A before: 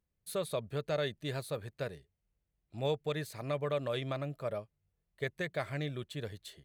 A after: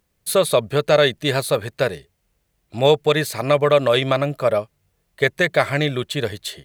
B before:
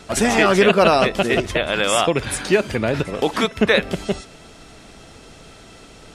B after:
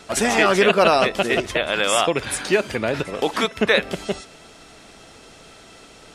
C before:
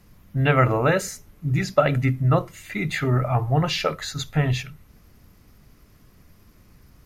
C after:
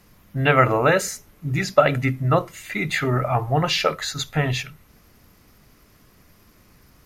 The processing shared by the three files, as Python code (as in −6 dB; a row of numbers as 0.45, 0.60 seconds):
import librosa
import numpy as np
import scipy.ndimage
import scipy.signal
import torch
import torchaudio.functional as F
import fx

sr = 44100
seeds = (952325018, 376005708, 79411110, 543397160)

y = fx.low_shelf(x, sr, hz=220.0, db=-8.5)
y = librosa.util.normalize(y) * 10.0 ** (-2 / 20.0)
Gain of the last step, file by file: +20.0, −0.5, +4.0 decibels